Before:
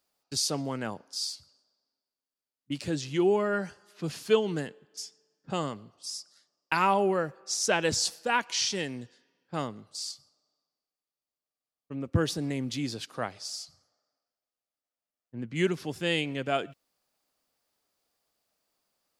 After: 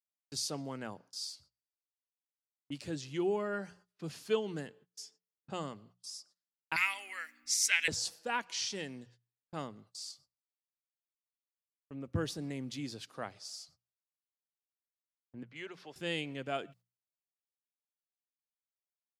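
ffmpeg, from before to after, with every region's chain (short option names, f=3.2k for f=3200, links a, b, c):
-filter_complex "[0:a]asettb=1/sr,asplit=3[a][b][c];[a]atrim=end=6.764[d];[b]atrim=start=6.76:end=7.88,asetpts=PTS-STARTPTS,afade=t=in:d=0.004:c=qsin,afade=t=out:st=1.116:d=0.004:c=qsin,highpass=f=2.1k:t=q:w=8.3,aemphasis=mode=production:type=50fm,aeval=exprs='val(0)+0.00282*(sin(2*PI*60*n/s)+sin(2*PI*2*60*n/s)/2+sin(2*PI*3*60*n/s)/3+sin(2*PI*4*60*n/s)/4+sin(2*PI*5*60*n/s)/5)':c=same[e];[c]atrim=start=7.876[f];[d][e]acrossfade=d=0.004:c1=hsin:c2=qsin[g];[g][f]acrossfade=d=0.004:c1=qsin:c2=hsin,asettb=1/sr,asplit=3[h][i][j];[h]atrim=end=15.434[k];[i]atrim=start=15.43:end=15.96,asetpts=PTS-STARTPTS,afade=t=in:d=0.004:c=qsin,afade=t=out:st=0.526:d=0.004:c=qsin,acrossover=split=450 5200:gain=0.178 1 0.2[l][m][n];[l][m][n]amix=inputs=3:normalize=0,acompressor=threshold=-35dB:ratio=2:attack=3.2:release=140:knee=1:detection=peak[o];[j]atrim=start=15.956[p];[k][o]acrossfade=d=0.004:c1=hsin:c2=qsin[q];[q][p]acrossfade=d=0.004:c1=qsin:c2=hsin,agate=range=-26dB:threshold=-52dB:ratio=16:detection=peak,bandreject=f=60:t=h:w=6,bandreject=f=120:t=h:w=6,bandreject=f=180:t=h:w=6,volume=-8dB"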